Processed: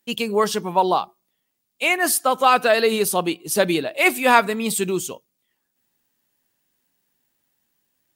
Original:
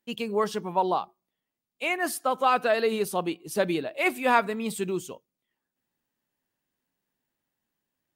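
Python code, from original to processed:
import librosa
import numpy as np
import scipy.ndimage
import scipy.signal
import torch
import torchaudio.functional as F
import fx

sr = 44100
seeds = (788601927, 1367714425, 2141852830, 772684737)

y = fx.high_shelf(x, sr, hz=3300.0, db=8.5)
y = y * 10.0 ** (6.0 / 20.0)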